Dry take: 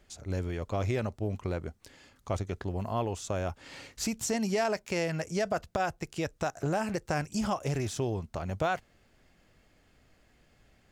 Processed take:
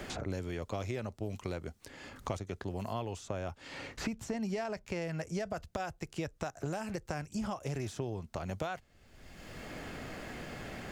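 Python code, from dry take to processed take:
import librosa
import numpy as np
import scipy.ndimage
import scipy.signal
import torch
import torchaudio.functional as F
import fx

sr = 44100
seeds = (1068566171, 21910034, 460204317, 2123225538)

y = fx.high_shelf(x, sr, hz=5600.0, db=-7.0, at=(2.93, 5.02))
y = fx.band_squash(y, sr, depth_pct=100)
y = y * 10.0 ** (-6.5 / 20.0)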